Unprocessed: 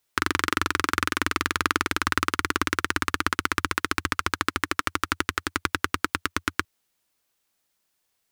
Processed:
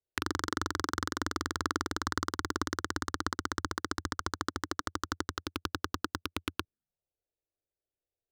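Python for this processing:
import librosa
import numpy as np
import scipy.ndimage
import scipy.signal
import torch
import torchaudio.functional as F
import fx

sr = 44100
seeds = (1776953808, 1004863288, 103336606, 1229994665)

y = fx.wiener(x, sr, points=41)
y = fx.env_phaser(y, sr, low_hz=210.0, high_hz=2500.0, full_db=-27.5)
y = y * 10.0 ** (-5.0 / 20.0)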